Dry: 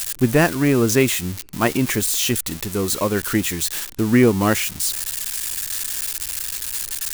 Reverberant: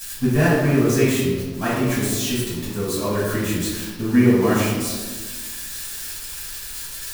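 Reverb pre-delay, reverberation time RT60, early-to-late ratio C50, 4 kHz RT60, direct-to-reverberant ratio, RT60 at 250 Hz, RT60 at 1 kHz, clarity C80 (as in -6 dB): 3 ms, 1.4 s, -1.0 dB, 0.85 s, -10.5 dB, 1.9 s, 1.3 s, 2.0 dB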